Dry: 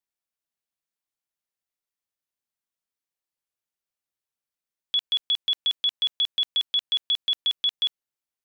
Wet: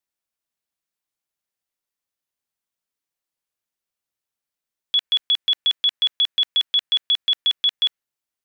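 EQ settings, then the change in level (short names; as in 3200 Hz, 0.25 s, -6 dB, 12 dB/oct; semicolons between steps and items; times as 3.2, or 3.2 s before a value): dynamic EQ 1800 Hz, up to +7 dB, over -42 dBFS, Q 1.3; +3.0 dB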